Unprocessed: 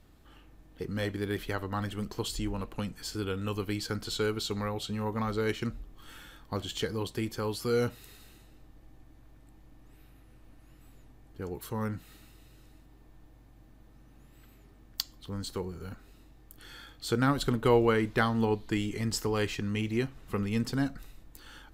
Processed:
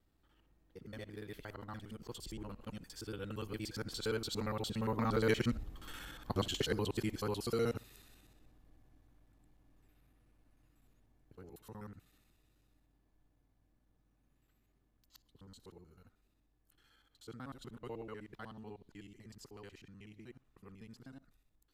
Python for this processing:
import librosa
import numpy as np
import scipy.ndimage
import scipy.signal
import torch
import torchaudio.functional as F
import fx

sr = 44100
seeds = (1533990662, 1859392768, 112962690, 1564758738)

y = fx.local_reverse(x, sr, ms=60.0)
y = fx.doppler_pass(y, sr, speed_mps=12, closest_m=9.7, pass_at_s=5.89)
y = y * 10.0 ** (1.5 / 20.0)